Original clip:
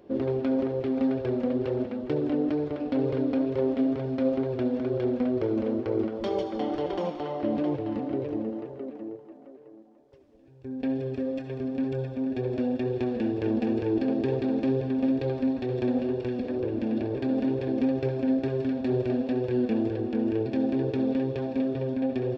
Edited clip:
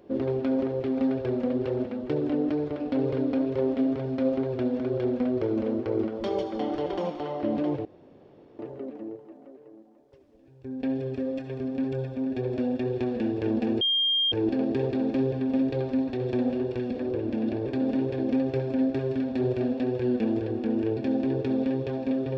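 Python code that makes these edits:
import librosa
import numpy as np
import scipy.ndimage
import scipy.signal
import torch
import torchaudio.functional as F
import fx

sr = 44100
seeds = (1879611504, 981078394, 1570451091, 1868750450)

y = fx.edit(x, sr, fx.room_tone_fill(start_s=7.85, length_s=0.74),
    fx.insert_tone(at_s=13.81, length_s=0.51, hz=3210.0, db=-21.0), tone=tone)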